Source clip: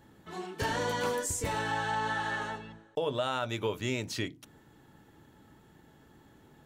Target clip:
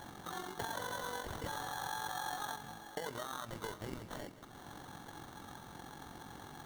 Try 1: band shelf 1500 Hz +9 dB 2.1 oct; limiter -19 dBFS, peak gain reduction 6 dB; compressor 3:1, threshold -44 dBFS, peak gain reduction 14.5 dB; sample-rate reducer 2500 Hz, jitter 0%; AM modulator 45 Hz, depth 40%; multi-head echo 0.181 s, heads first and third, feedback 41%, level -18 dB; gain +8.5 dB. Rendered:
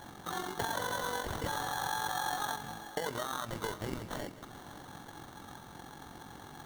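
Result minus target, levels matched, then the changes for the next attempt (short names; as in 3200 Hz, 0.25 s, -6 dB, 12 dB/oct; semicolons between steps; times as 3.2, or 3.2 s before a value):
compressor: peak gain reduction -5.5 dB
change: compressor 3:1, threshold -52.5 dBFS, peak gain reduction 20 dB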